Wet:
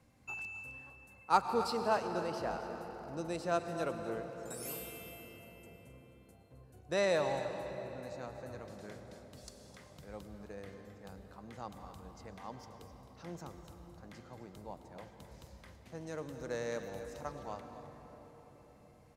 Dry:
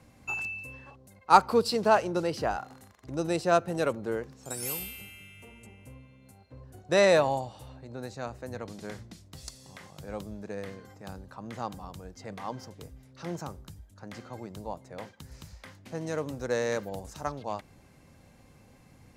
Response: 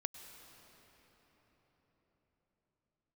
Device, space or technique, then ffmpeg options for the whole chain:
cave: -filter_complex "[0:a]aecho=1:1:263:0.224[s0];[1:a]atrim=start_sample=2205[s1];[s0][s1]afir=irnorm=-1:irlink=0,volume=0.422"

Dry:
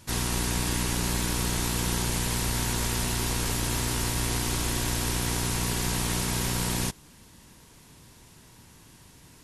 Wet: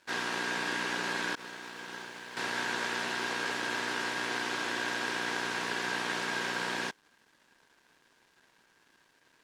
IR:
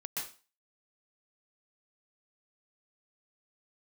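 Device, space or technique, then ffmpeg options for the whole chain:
pocket radio on a weak battery: -filter_complex "[0:a]highpass=120,asettb=1/sr,asplit=3[s0][s1][s2];[s0]atrim=end=1.354[s3];[s1]atrim=start=1.35:end=2.37,asetpts=PTS-STARTPTS,afade=t=in:d=0.004:c=qsin,afade=t=out:st=1.016:d=0.004:c=qsin,agate=range=0.0224:threshold=0.0891:ratio=3:detection=peak[s4];[s2]atrim=start=2.366[s5];[s3][s4]acrossfade=d=0.004:c1=hsin:c2=qsin[s6];[s6][s5]acrossfade=d=0.004:c1=qsin:c2=hsin,highpass=380,lowpass=3700,aeval=exprs='sgn(val(0))*max(abs(val(0))-0.00106,0)':c=same,equalizer=f=1600:t=o:w=0.22:g=10.5"

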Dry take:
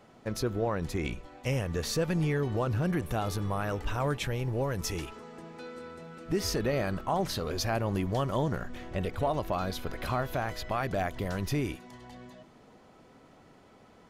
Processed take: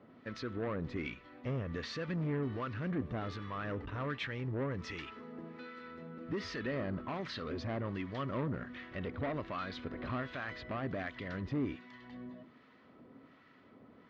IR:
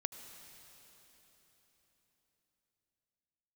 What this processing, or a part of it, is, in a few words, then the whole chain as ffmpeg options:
guitar amplifier with harmonic tremolo: -filter_complex "[0:a]acrossover=split=1000[s0][s1];[s0]aeval=exprs='val(0)*(1-0.7/2+0.7/2*cos(2*PI*1.3*n/s))':c=same[s2];[s1]aeval=exprs='val(0)*(1-0.7/2-0.7/2*cos(2*PI*1.3*n/s))':c=same[s3];[s2][s3]amix=inputs=2:normalize=0,asoftclip=type=tanh:threshold=0.0299,highpass=77,equalizer=f=260:t=q:w=4:g=8,equalizer=f=790:t=q:w=4:g=-7,equalizer=f=1200:t=q:w=4:g=4,equalizer=f=1900:t=q:w=4:g=6,lowpass=f=4100:w=0.5412,lowpass=f=4100:w=1.3066,volume=0.841"

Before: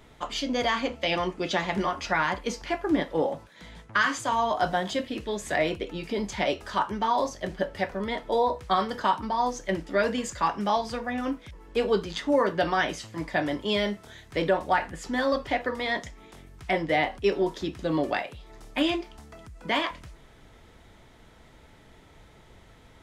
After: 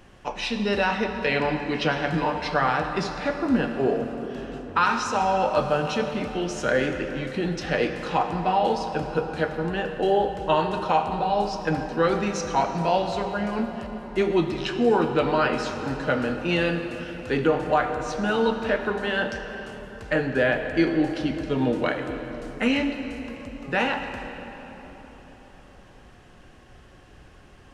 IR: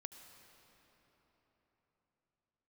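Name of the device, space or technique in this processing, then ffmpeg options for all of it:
slowed and reverbed: -filter_complex "[0:a]asetrate=36603,aresample=44100[s0];[1:a]atrim=start_sample=2205[s1];[s0][s1]afir=irnorm=-1:irlink=0,volume=2.51"

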